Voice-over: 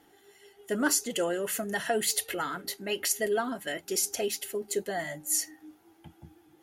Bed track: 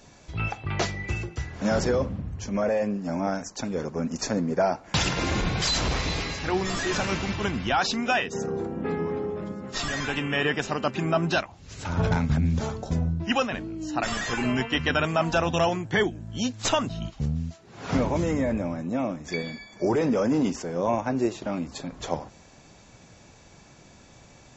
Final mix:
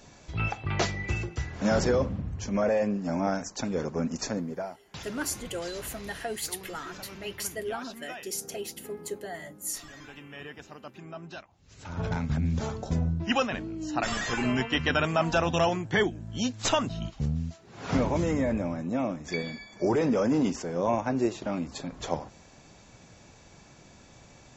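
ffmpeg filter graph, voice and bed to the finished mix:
-filter_complex "[0:a]adelay=4350,volume=0.501[s0];[1:a]volume=6.31,afade=t=out:st=4.01:d=0.72:silence=0.133352,afade=t=in:st=11.47:d=1.37:silence=0.149624[s1];[s0][s1]amix=inputs=2:normalize=0"

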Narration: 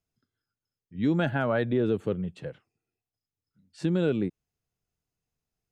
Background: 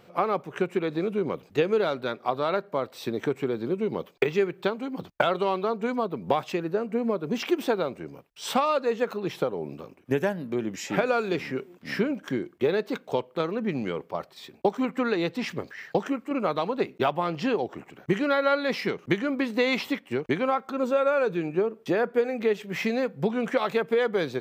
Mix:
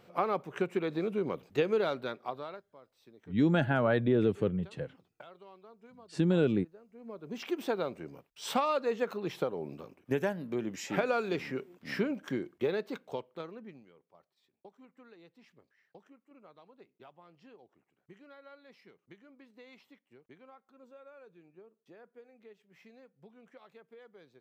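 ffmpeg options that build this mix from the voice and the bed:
-filter_complex "[0:a]adelay=2350,volume=0.891[s0];[1:a]volume=7.5,afade=t=out:st=1.91:d=0.73:silence=0.0707946,afade=t=in:st=6.95:d=0.92:silence=0.0749894,afade=t=out:st=12.45:d=1.41:silence=0.0562341[s1];[s0][s1]amix=inputs=2:normalize=0"

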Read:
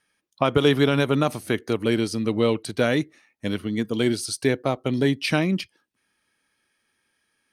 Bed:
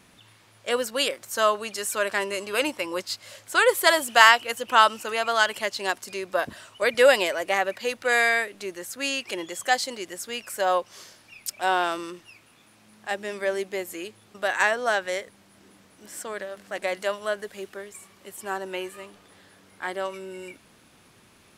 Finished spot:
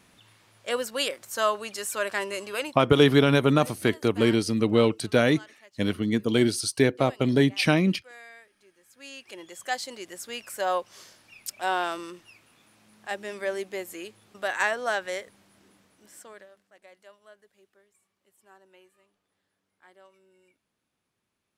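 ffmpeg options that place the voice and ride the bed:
-filter_complex "[0:a]adelay=2350,volume=1.06[s0];[1:a]volume=10,afade=t=out:st=2.46:d=0.4:silence=0.0668344,afade=t=in:st=8.82:d=1.46:silence=0.0707946,afade=t=out:st=15.36:d=1.32:silence=0.0841395[s1];[s0][s1]amix=inputs=2:normalize=0"

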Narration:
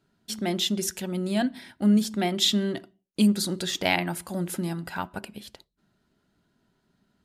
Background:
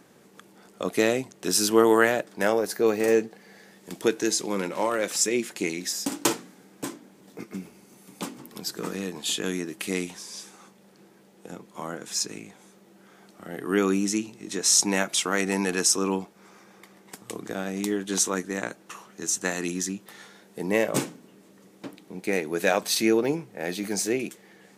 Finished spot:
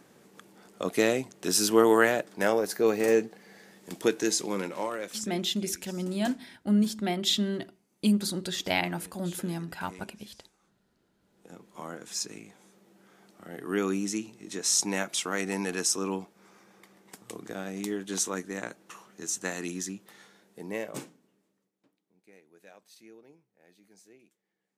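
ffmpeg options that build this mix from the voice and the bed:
-filter_complex "[0:a]adelay=4850,volume=0.668[s0];[1:a]volume=4.47,afade=t=out:st=4.42:d=0.91:silence=0.11885,afade=t=in:st=11.18:d=0.55:silence=0.177828,afade=t=out:st=19.79:d=1.93:silence=0.0530884[s1];[s0][s1]amix=inputs=2:normalize=0"

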